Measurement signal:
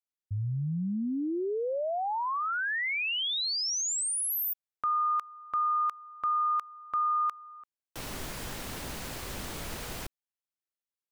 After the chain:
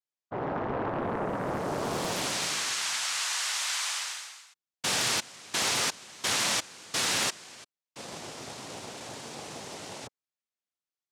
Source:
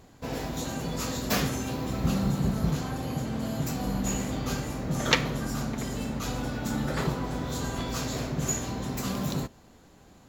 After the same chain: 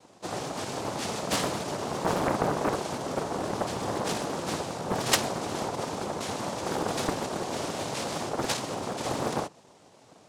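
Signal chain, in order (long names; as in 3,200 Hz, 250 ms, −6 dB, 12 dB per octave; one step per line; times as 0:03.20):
cochlear-implant simulation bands 2
highs frequency-modulated by the lows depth 0.9 ms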